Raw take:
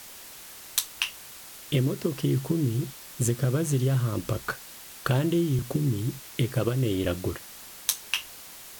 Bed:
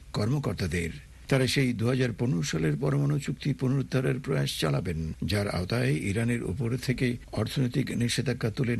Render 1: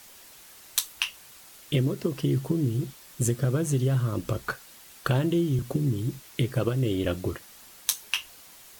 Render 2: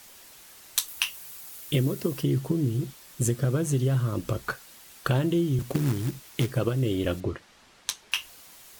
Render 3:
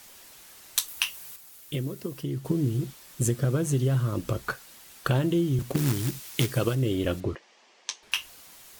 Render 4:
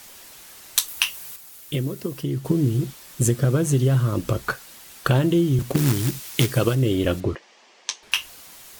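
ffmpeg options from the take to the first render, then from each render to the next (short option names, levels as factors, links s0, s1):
-af "afftdn=nr=6:nf=-45"
-filter_complex "[0:a]asettb=1/sr,asplit=3[s0][s1][s2];[s0]atrim=end=0.884[s3];[s1]atrim=start=0.88:end=2.23,asetpts=PTS-STARTPTS,afade=t=in:d=0.004:c=qsin,afade=t=out:st=1.346:d=0.004:c=qsin,highshelf=f=9600:g=11.5[s4];[s2]atrim=start=2.226[s5];[s3][s4]acrossfade=d=0.004:c1=hsin:c2=qsin[s6];[s6][s5]acrossfade=d=0.004:c1=qsin:c2=hsin,asplit=3[s7][s8][s9];[s7]afade=t=out:st=5.59:d=0.02[s10];[s8]acrusher=bits=3:mode=log:mix=0:aa=0.000001,afade=t=in:st=5.59:d=0.02,afade=t=out:st=6.5:d=0.02[s11];[s9]afade=t=in:st=6.5:d=0.02[s12];[s10][s11][s12]amix=inputs=3:normalize=0,asettb=1/sr,asplit=3[s13][s14][s15];[s13]atrim=end=7.204[s16];[s14]atrim=start=7.2:end=8.12,asetpts=PTS-STARTPTS,afade=t=in:d=0.004:c=qsin,afade=t=out:st=0.916:d=0.004:c=qsin,adynamicsmooth=sensitivity=1:basefreq=4900[s17];[s15]atrim=start=8.116[s18];[s16][s17]acrossfade=d=0.004:c1=hsin:c2=qsin[s19];[s19][s18]acrossfade=d=0.004:c1=qsin:c2=hsin"
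-filter_complex "[0:a]asettb=1/sr,asplit=3[s0][s1][s2];[s0]atrim=end=5.774[s3];[s1]atrim=start=5.77:end=6.75,asetpts=PTS-STARTPTS,afade=t=in:d=0.004:c=qsin,afade=t=out:st=0.976:d=0.004:c=qsin,highshelf=f=2100:g=7.5[s4];[s2]atrim=start=6.746[s5];[s3][s4]acrossfade=d=0.004:c1=hsin:c2=qsin[s6];[s6][s5]acrossfade=d=0.004:c1=qsin:c2=hsin,asettb=1/sr,asplit=3[s7][s8][s9];[s7]atrim=end=7.354[s10];[s8]atrim=start=7.35:end=8.03,asetpts=PTS-STARTPTS,afade=t=in:d=0.004:c=qsin,afade=t=out:st=0.676:d=0.004:c=qsin,highpass=f=270:w=0.5412,highpass=f=270:w=1.3066,equalizer=f=280:t=q:w=4:g=-8,equalizer=f=1400:t=q:w=4:g=-9,equalizer=f=3900:t=q:w=4:g=-5,lowpass=f=6700:w=0.5412,lowpass=f=6700:w=1.3066[s11];[s9]atrim=start=8.026[s12];[s10][s11]acrossfade=d=0.004:c1=hsin:c2=qsin[s13];[s13][s12]acrossfade=d=0.004:c1=qsin:c2=hsin,asplit=3[s14][s15][s16];[s14]atrim=end=1.362[s17];[s15]atrim=start=1.358:end=2.452,asetpts=PTS-STARTPTS,volume=0.473[s18];[s16]atrim=start=2.448[s19];[s17][s18]acrossfade=d=0.004:c1=hsin:c2=hsin[s20];[s20][s19]acrossfade=d=0.004:c1=hsin:c2=hsin"
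-af "volume=1.88"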